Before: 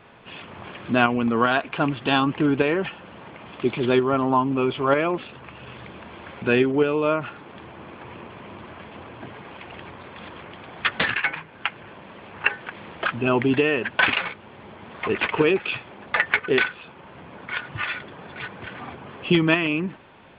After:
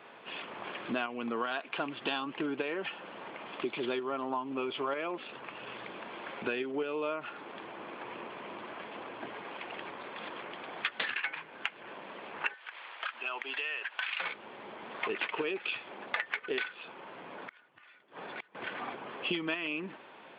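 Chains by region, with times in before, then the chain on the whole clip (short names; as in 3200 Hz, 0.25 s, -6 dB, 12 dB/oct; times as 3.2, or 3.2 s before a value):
12.54–14.2 HPF 1100 Hz + compressor 2.5:1, threshold -33 dBFS
16.99–18.55 transient shaper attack -6 dB, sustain +4 dB + flipped gate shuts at -26 dBFS, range -28 dB
whole clip: HPF 310 Hz 12 dB/oct; dynamic EQ 3800 Hz, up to +4 dB, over -37 dBFS, Q 0.82; compressor 6:1, threshold -30 dBFS; gain -1.5 dB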